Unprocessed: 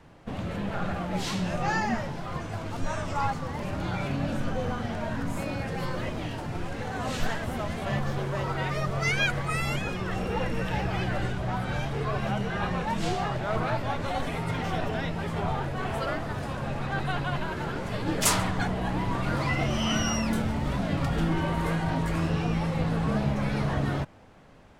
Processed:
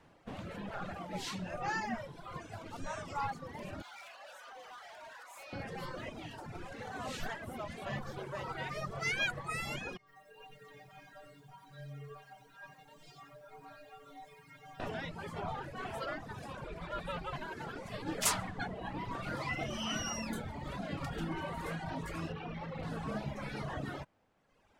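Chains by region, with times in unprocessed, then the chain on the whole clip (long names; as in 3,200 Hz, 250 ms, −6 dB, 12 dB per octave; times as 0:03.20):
0:03.82–0:05.53: high-pass filter 660 Hz 24 dB per octave + hard clipping −39 dBFS
0:09.97–0:14.80: stiff-string resonator 140 Hz, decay 0.7 s, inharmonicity 0.008 + feedback echo at a low word length 92 ms, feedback 55%, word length 10 bits, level −3.5 dB
0:16.64–0:17.33: parametric band 6,500 Hz −3.5 dB 0.24 octaves + frequency shifter −180 Hz
0:22.32–0:22.83: low-pass filter 3,600 Hz + gain into a clipping stage and back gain 24 dB
whole clip: reverb reduction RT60 1.4 s; low-shelf EQ 180 Hz −7 dB; level −6.5 dB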